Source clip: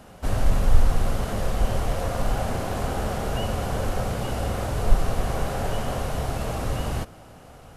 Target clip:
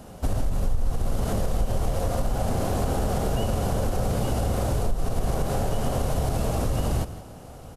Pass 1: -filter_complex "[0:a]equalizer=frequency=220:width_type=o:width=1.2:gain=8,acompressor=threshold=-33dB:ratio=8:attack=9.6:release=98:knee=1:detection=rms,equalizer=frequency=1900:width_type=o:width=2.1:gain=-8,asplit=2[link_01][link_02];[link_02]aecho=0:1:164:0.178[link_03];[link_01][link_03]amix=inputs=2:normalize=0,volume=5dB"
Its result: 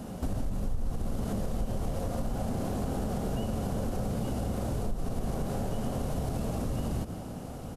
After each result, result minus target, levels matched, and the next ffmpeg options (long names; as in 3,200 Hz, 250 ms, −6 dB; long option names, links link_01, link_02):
downward compressor: peak gain reduction +7.5 dB; 250 Hz band +4.0 dB
-filter_complex "[0:a]equalizer=frequency=220:width_type=o:width=1.2:gain=8,acompressor=threshold=-24.5dB:ratio=8:attack=9.6:release=98:knee=1:detection=rms,equalizer=frequency=1900:width_type=o:width=2.1:gain=-8,asplit=2[link_01][link_02];[link_02]aecho=0:1:164:0.178[link_03];[link_01][link_03]amix=inputs=2:normalize=0,volume=5dB"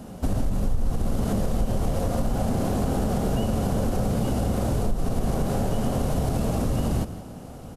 250 Hz band +4.0 dB
-filter_complex "[0:a]acompressor=threshold=-24.5dB:ratio=8:attack=9.6:release=98:knee=1:detection=rms,equalizer=frequency=1900:width_type=o:width=2.1:gain=-8,asplit=2[link_01][link_02];[link_02]aecho=0:1:164:0.178[link_03];[link_01][link_03]amix=inputs=2:normalize=0,volume=5dB"